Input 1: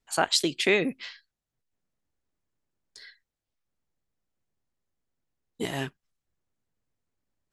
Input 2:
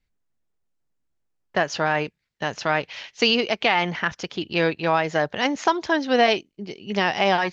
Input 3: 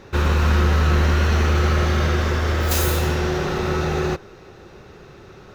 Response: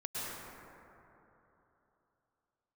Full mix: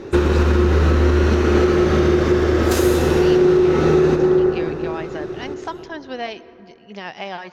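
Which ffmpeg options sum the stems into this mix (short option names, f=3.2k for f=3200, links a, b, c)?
-filter_complex "[0:a]asplit=2[a][b];[b]afreqshift=-1.5[c];[a][c]amix=inputs=2:normalize=1,volume=-13.5dB[d];[1:a]tremolo=f=7.2:d=0.33,volume=-9.5dB,asplit=2[e][f];[f]volume=-19.5dB[g];[2:a]lowpass=11k,equalizer=f=340:t=o:w=0.96:g=14,volume=0.5dB,asplit=2[h][i];[i]volume=-5.5dB[j];[3:a]atrim=start_sample=2205[k];[g][j]amix=inputs=2:normalize=0[l];[l][k]afir=irnorm=-1:irlink=0[m];[d][e][h][m]amix=inputs=4:normalize=0,alimiter=limit=-6.5dB:level=0:latency=1:release=339"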